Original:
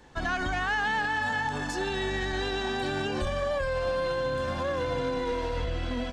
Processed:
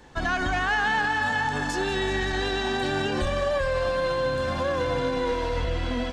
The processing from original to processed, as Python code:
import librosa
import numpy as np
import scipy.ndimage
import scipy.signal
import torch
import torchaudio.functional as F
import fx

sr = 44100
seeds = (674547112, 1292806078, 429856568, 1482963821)

y = fx.echo_thinned(x, sr, ms=191, feedback_pct=76, hz=420.0, wet_db=-12.0)
y = y * 10.0 ** (3.5 / 20.0)